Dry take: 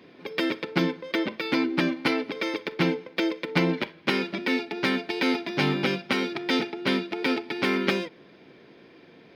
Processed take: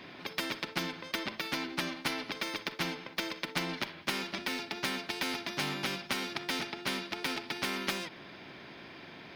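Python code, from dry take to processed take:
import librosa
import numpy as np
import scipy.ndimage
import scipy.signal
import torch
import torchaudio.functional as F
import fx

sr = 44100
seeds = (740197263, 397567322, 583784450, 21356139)

y = fx.peak_eq(x, sr, hz=480.0, db=-13.0, octaves=0.33)
y = fx.spectral_comp(y, sr, ratio=2.0)
y = y * librosa.db_to_amplitude(-7.0)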